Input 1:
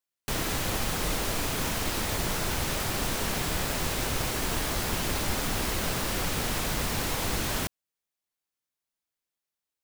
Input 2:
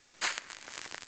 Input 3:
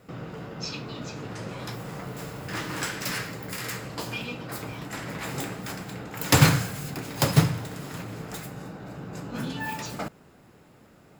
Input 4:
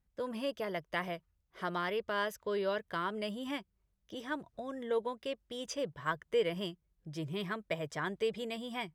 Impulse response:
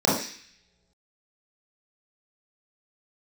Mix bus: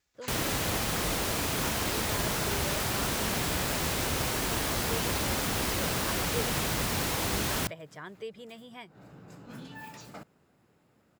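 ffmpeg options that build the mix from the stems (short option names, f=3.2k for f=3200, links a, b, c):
-filter_complex "[0:a]volume=0dB[a];[1:a]volume=-16dB[b];[2:a]adelay=150,volume=-12dB[c];[3:a]volume=-7dB,asplit=2[d][e];[e]apad=whole_len=500310[f];[c][f]sidechaincompress=threshold=-58dB:ratio=10:attack=16:release=133[g];[a][b][g][d]amix=inputs=4:normalize=0,highpass=52"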